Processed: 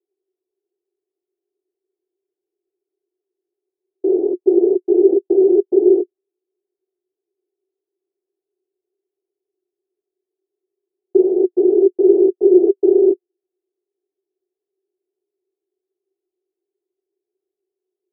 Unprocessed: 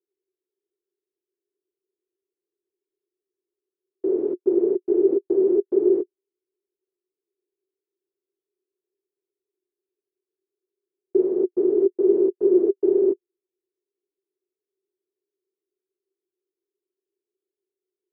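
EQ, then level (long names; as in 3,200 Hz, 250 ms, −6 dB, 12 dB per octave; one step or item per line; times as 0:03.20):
low-pass with resonance 740 Hz, resonance Q 8.1
parametric band 360 Hz +14 dB 1.1 octaves
−9.5 dB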